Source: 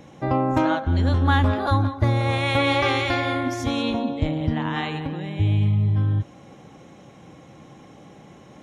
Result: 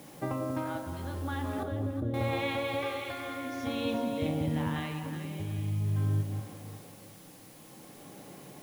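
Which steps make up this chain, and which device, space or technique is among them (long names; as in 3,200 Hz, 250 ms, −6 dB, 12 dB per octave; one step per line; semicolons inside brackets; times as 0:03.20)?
medium wave at night (band-pass filter 120–4,500 Hz; downward compressor, threshold −24 dBFS, peak gain reduction 8 dB; amplitude tremolo 0.48 Hz, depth 57%; steady tone 10,000 Hz −57 dBFS; white noise bed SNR 21 dB)
0:01.63–0:02.14: Butterworth low-pass 540 Hz
delay that swaps between a low-pass and a high-pass 186 ms, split 820 Hz, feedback 53%, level −4 dB
rectangular room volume 72 cubic metres, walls mixed, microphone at 0.33 metres
level −4.5 dB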